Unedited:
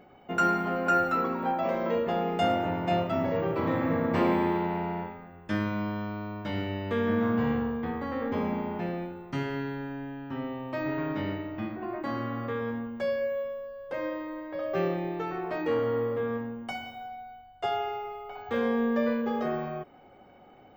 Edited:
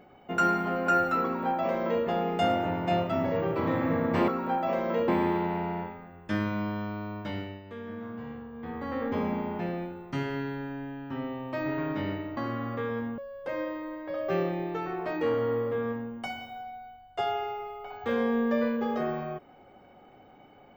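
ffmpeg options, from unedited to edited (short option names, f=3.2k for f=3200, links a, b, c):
-filter_complex "[0:a]asplit=7[a][b][c][d][e][f][g];[a]atrim=end=4.282[h];[b]atrim=start=1.238:end=2.042[i];[c]atrim=start=4.278:end=6.82,asetpts=PTS-STARTPTS,afade=t=out:st=2.112:d=0.43:silence=0.223872[j];[d]atrim=start=6.82:end=7.71,asetpts=PTS-STARTPTS,volume=-13dB[k];[e]atrim=start=7.71:end=11.572,asetpts=PTS-STARTPTS,afade=t=in:d=0.43:silence=0.223872[l];[f]atrim=start=12.078:end=12.892[m];[g]atrim=start=13.628[n];[h][i]acrossfade=d=0.004:c1=hsin:c2=hsin[o];[j][k][l]concat=n=3:v=0:a=1[p];[o][p]acrossfade=d=0.004:c1=hsin:c2=hsin[q];[q][m]acrossfade=d=0.004:c1=hsin:c2=hsin[r];[r][n]acrossfade=d=0.004:c1=hsin:c2=hsin"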